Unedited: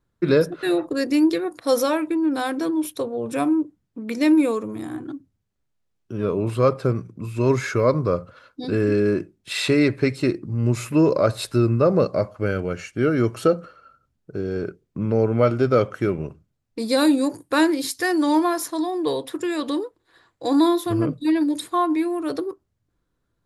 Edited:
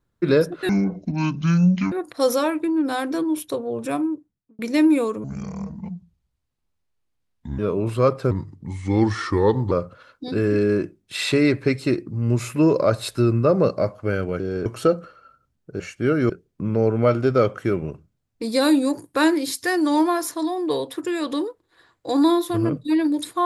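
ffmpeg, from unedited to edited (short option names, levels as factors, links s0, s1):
-filter_complex "[0:a]asplit=12[s0][s1][s2][s3][s4][s5][s6][s7][s8][s9][s10][s11];[s0]atrim=end=0.694[s12];[s1]atrim=start=0.69:end=1.39,asetpts=PTS-STARTPTS,asetrate=25137,aresample=44100[s13];[s2]atrim=start=1.386:end=4.06,asetpts=PTS-STARTPTS,afade=t=out:st=1.844:d=0.83[s14];[s3]atrim=start=4.06:end=4.714,asetpts=PTS-STARTPTS,afade=t=in:d=0.004:c=hsin[s15];[s4]atrim=start=4.71:end=6.19,asetpts=PTS-STARTPTS,asetrate=27783,aresample=44100[s16];[s5]atrim=start=6.186:end=6.914[s17];[s6]atrim=start=6.91:end=8.08,asetpts=PTS-STARTPTS,asetrate=36603,aresample=44100,atrim=end_sample=62165,asetpts=PTS-STARTPTS[s18];[s7]atrim=start=8.076:end=12.762[s19];[s8]atrim=start=14.398:end=14.662[s20];[s9]atrim=start=13.258:end=14.402[s21];[s10]atrim=start=12.758:end=13.262[s22];[s11]atrim=start=14.658[s23];[s12][s13]acrossfade=d=0.004:c1=hsin:c2=hsin[s24];[s14][s15]concat=n=2:v=0:a=1[s25];[s24][s25]acrossfade=d=0.004:c1=hsin:c2=hsin[s26];[s26][s16]acrossfade=d=0.004:c1=hsin:c2=hsin[s27];[s27][s17]acrossfade=d=0.004:c1=hsin:c2=hsin[s28];[s28][s18]acrossfade=d=0.004:c1=hsin:c2=hsin[s29];[s29][s19]acrossfade=d=0.004:c1=hsin:c2=hsin[s30];[s30][s20]acrossfade=d=0.004:c1=hsin:c2=hsin[s31];[s31][s21]acrossfade=d=0.004:c1=hsin:c2=hsin[s32];[s32][s22]acrossfade=d=0.004:c1=hsin:c2=hsin[s33];[s33][s23]acrossfade=d=0.004:c1=hsin:c2=hsin"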